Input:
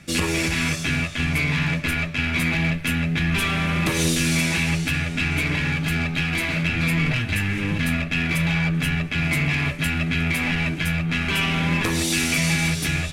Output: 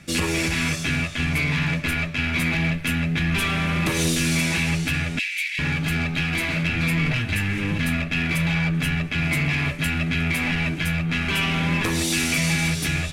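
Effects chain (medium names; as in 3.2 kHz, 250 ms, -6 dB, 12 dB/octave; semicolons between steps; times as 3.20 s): 5.19–5.59 s: steep high-pass 1.9 kHz 48 dB/octave; saturation -11 dBFS, distortion -26 dB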